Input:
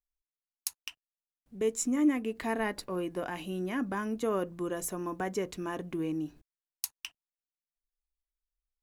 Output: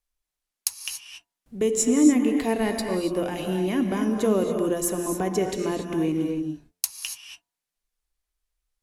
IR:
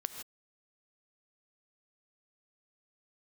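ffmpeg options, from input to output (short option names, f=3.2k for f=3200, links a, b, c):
-filter_complex "[0:a]acrossover=split=830|2300[a][b][c];[a]bandreject=f=88.09:t=h:w=4,bandreject=f=176.18:t=h:w=4,bandreject=f=264.27:t=h:w=4,bandreject=f=352.36:t=h:w=4,bandreject=f=440.45:t=h:w=4,bandreject=f=528.54:t=h:w=4,bandreject=f=616.63:t=h:w=4,bandreject=f=704.72:t=h:w=4,bandreject=f=792.81:t=h:w=4,bandreject=f=880.9:t=h:w=4,bandreject=f=968.99:t=h:w=4,bandreject=f=1.05708k:t=h:w=4,bandreject=f=1.14517k:t=h:w=4,bandreject=f=1.23326k:t=h:w=4,bandreject=f=1.32135k:t=h:w=4,bandreject=f=1.40944k:t=h:w=4,bandreject=f=1.49753k:t=h:w=4,bandreject=f=1.58562k:t=h:w=4,bandreject=f=1.67371k:t=h:w=4,bandreject=f=1.7618k:t=h:w=4,bandreject=f=1.84989k:t=h:w=4,bandreject=f=1.93798k:t=h:w=4,bandreject=f=2.02607k:t=h:w=4,bandreject=f=2.11416k:t=h:w=4,bandreject=f=2.20225k:t=h:w=4,bandreject=f=2.29034k:t=h:w=4,bandreject=f=2.37843k:t=h:w=4,bandreject=f=2.46652k:t=h:w=4[d];[b]acompressor=threshold=-55dB:ratio=6[e];[d][e][c]amix=inputs=3:normalize=0[f];[1:a]atrim=start_sample=2205,asetrate=25137,aresample=44100[g];[f][g]afir=irnorm=-1:irlink=0,volume=7dB"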